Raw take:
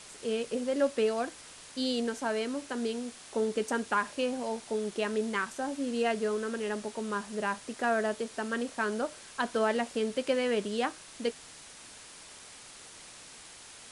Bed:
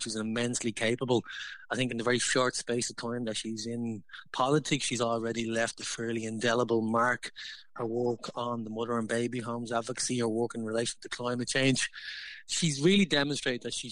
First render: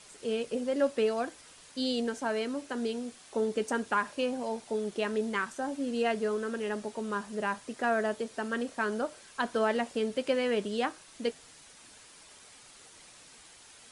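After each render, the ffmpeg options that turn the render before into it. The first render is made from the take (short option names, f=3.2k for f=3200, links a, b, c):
-af "afftdn=nr=6:nf=-50"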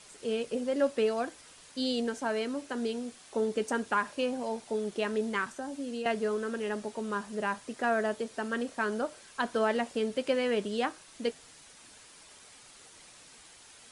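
-filter_complex "[0:a]asettb=1/sr,asplit=3[a][b][c];[a]atrim=end=5.464[d];[b]atrim=start=5.46:end=6.06,asetpts=PTS-STARTPTS,afade=t=in:d=0.004:c=qsin,afade=t=out:st=0.596:d=0.004:c=qsin,acrossover=split=270|3100[e][f][g];[e]acompressor=threshold=-42dB:ratio=4[h];[f]acompressor=threshold=-38dB:ratio=4[i];[g]acompressor=threshold=-49dB:ratio=4[j];[h][i][j]amix=inputs=3:normalize=0[k];[c]atrim=start=6.056[l];[d][k]acrossfade=d=0.004:c1=hsin:c2=qsin[m];[m][l]acrossfade=d=0.004:c1=qsin:c2=hsin"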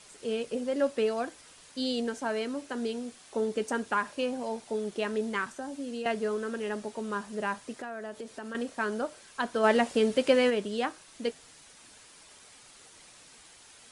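-filter_complex "[0:a]asettb=1/sr,asplit=3[a][b][c];[a]atrim=end=7.734[d];[b]atrim=start=7.73:end=8.55,asetpts=PTS-STARTPTS,afade=t=in:d=0.004:c=qsin,afade=t=out:st=0.816:d=0.004:c=qsin,acompressor=threshold=-36dB:ratio=5:attack=3.2:release=140:knee=1:detection=peak[e];[c]atrim=start=8.546[f];[d][e]acrossfade=d=0.004:c1=hsin:c2=qsin[g];[g][f]acrossfade=d=0.004:c1=qsin:c2=hsin,asplit=3[h][i][j];[h]afade=t=out:st=9.63:d=0.02[k];[i]acontrast=48,afade=t=in:st=9.63:d=0.02,afade=t=out:st=10.49:d=0.02[l];[j]afade=t=in:st=10.49:d=0.02[m];[k][l][m]amix=inputs=3:normalize=0"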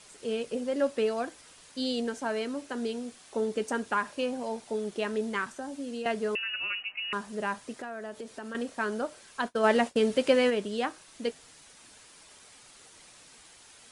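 -filter_complex "[0:a]asettb=1/sr,asplit=3[a][b][c];[a]atrim=end=6.354[d];[b]atrim=start=6.35:end=7.13,asetpts=PTS-STARTPTS,afade=t=in:d=0.004:c=qsin,afade=t=out:st=0.776:d=0.004:c=qsin,lowpass=f=2.6k:t=q:w=0.5098,lowpass=f=2.6k:t=q:w=0.6013,lowpass=f=2.6k:t=q:w=0.9,lowpass=f=2.6k:t=q:w=2.563,afreqshift=-3100[e];[c]atrim=start=7.126[f];[d][e]acrossfade=d=0.004:c1=hsin:c2=qsin[g];[g][f]acrossfade=d=0.004:c1=qsin:c2=hsin,asplit=3[h][i][j];[h]afade=t=out:st=9.47:d=0.02[k];[i]agate=range=-33dB:threshold=-34dB:ratio=3:release=100:detection=peak,afade=t=in:st=9.47:d=0.02,afade=t=out:st=10.11:d=0.02[l];[j]afade=t=in:st=10.11:d=0.02[m];[k][l][m]amix=inputs=3:normalize=0"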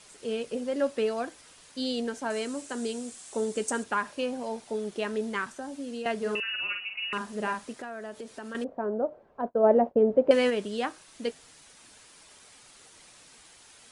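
-filter_complex "[0:a]asettb=1/sr,asplit=3[a][b][c];[a]atrim=end=2.304[d];[b]atrim=start=2.3:end=3.84,asetpts=PTS-STARTPTS,afade=t=in:d=0.004:c=qsin,afade=t=out:st=1.536:d=0.004:c=qsin,equalizer=f=7.9k:w=1.4:g=12.5[e];[c]atrim=start=3.836[f];[d][e]acrossfade=d=0.004:c1=hsin:c2=qsin[g];[g][f]acrossfade=d=0.004:c1=qsin:c2=hsin,asettb=1/sr,asplit=3[h][i][j];[h]atrim=end=6.174[k];[i]atrim=start=6.17:end=7.73,asetpts=PTS-STARTPTS,afade=t=in:d=0.004:c=qsin,afade=t=out:st=1.556:d=0.004:c=qsin,asplit=2[l][m];[m]adelay=48,volume=-5.5dB[n];[l][n]amix=inputs=2:normalize=0,atrim=end_sample=68796[o];[j]atrim=start=7.726[p];[k][o]acrossfade=d=0.004:c1=hsin:c2=qsin[q];[q][p]acrossfade=d=0.004:c1=qsin:c2=hsin,asettb=1/sr,asplit=3[r][s][t];[r]atrim=end=8.644[u];[s]atrim=start=8.64:end=10.31,asetpts=PTS-STARTPTS,afade=t=in:d=0.004:c=qsin,afade=t=out:st=1.666:d=0.004:c=qsin,lowpass=f=640:t=q:w=1.9[v];[t]atrim=start=10.306[w];[u][v]acrossfade=d=0.004:c1=hsin:c2=qsin[x];[x][w]acrossfade=d=0.004:c1=qsin:c2=hsin"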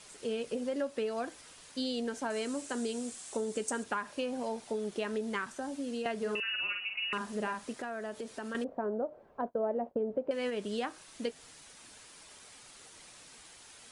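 -af "acompressor=threshold=-31dB:ratio=5"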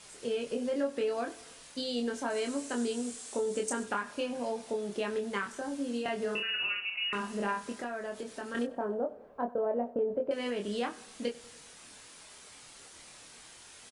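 -filter_complex "[0:a]asplit=2[a][b];[b]adelay=25,volume=-4dB[c];[a][c]amix=inputs=2:normalize=0,aecho=1:1:96|192|288|384|480:0.1|0.059|0.0348|0.0205|0.0121"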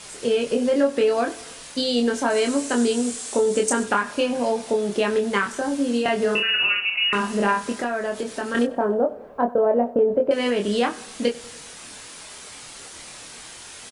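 -af "volume=12dB"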